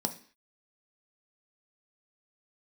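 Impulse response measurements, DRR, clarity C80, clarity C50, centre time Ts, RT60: 6.0 dB, 18.5 dB, 14.0 dB, 7 ms, 0.45 s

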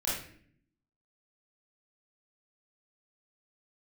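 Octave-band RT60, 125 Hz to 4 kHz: 0.95 s, 1.0 s, 0.65 s, 0.50 s, 0.60 s, 0.45 s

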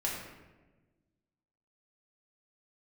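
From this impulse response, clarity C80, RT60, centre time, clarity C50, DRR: 4.0 dB, 1.2 s, 58 ms, 2.0 dB, -5.0 dB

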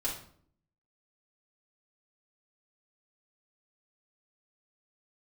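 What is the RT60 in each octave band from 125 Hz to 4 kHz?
0.85 s, 0.85 s, 0.60 s, 0.55 s, 0.45 s, 0.40 s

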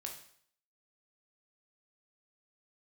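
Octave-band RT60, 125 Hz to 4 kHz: 0.65 s, 0.55 s, 0.60 s, 0.60 s, 0.60 s, 0.60 s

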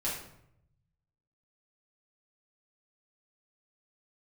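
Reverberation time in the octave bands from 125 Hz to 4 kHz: 1.6 s, 0.90 s, 0.80 s, 0.70 s, 0.60 s, 0.50 s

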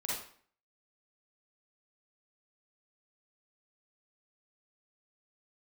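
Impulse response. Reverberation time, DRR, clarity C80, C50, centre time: 0.50 s, -6.5 dB, 5.5 dB, -2.0 dB, 61 ms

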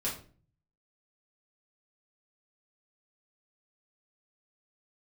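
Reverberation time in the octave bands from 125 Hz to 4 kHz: 0.85 s, 0.60 s, 0.45 s, 0.35 s, 0.35 s, 0.30 s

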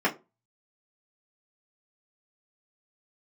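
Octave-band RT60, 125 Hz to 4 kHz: 0.35 s, 0.30 s, 0.30 s, 0.25 s, 0.20 s, 0.15 s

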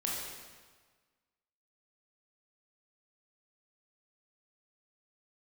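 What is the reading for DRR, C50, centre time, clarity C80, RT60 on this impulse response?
-4.5 dB, -0.5 dB, 89 ms, 2.0 dB, 1.5 s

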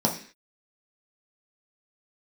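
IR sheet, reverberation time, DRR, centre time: 0.45 s, -1.5 dB, 18 ms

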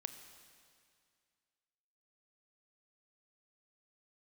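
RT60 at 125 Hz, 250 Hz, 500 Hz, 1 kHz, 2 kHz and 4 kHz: 2.3 s, 2.2 s, 2.2 s, 2.2 s, 2.2 s, 2.1 s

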